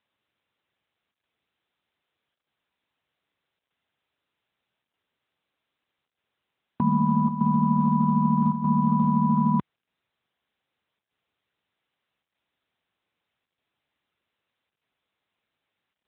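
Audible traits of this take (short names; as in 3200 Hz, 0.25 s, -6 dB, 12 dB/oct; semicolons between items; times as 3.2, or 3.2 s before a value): chopped level 0.81 Hz, depth 60%, duty 90%; AMR-NB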